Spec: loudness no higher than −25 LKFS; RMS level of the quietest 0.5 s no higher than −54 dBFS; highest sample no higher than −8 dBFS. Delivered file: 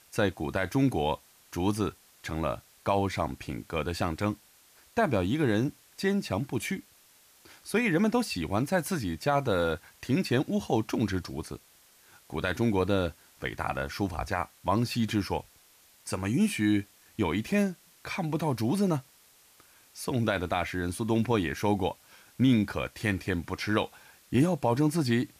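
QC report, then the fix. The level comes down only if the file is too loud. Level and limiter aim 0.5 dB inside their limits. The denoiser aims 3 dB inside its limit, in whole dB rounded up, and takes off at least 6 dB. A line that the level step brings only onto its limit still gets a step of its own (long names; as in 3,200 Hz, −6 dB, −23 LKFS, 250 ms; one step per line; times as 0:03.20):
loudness −29.5 LKFS: in spec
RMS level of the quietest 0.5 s −60 dBFS: in spec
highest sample −14.0 dBFS: in spec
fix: no processing needed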